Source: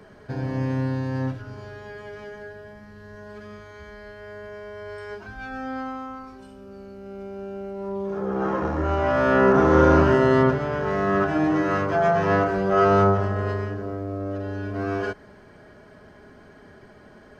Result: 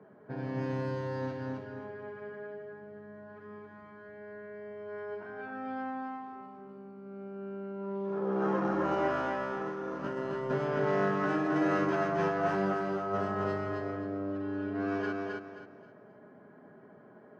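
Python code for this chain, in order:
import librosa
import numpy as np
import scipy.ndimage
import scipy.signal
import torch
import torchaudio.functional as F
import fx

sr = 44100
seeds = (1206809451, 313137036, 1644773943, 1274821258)

y = fx.env_lowpass(x, sr, base_hz=1100.0, full_db=-18.0)
y = scipy.signal.sosfilt(scipy.signal.butter(4, 140.0, 'highpass', fs=sr, output='sos'), y)
y = fx.over_compress(y, sr, threshold_db=-22.0, ratio=-0.5)
y = fx.echo_feedback(y, sr, ms=265, feedback_pct=30, wet_db=-3)
y = y * 10.0 ** (-9.0 / 20.0)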